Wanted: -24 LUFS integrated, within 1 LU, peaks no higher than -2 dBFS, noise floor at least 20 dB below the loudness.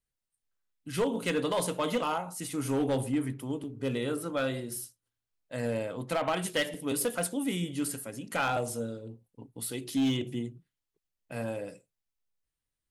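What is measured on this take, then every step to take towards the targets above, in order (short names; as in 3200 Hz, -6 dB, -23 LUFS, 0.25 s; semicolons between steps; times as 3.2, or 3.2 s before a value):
clipped 0.9%; flat tops at -22.5 dBFS; dropouts 1; longest dropout 3.1 ms; loudness -32.0 LUFS; peak -22.5 dBFS; loudness target -24.0 LUFS
-> clip repair -22.5 dBFS; interpolate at 6.74, 3.1 ms; gain +8 dB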